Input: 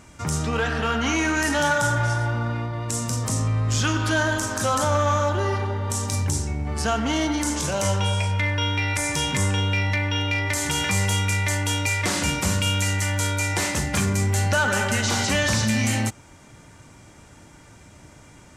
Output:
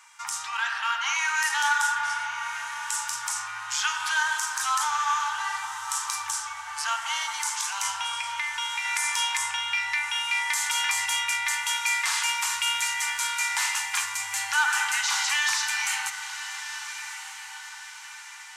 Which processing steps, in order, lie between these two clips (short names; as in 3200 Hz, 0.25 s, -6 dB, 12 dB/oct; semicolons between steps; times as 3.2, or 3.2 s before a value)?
elliptic high-pass 880 Hz, stop band 40 dB; 7.89–8.85 compressor, threshold -27 dBFS, peak gain reduction 5 dB; diffused feedback echo 1.251 s, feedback 48%, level -10.5 dB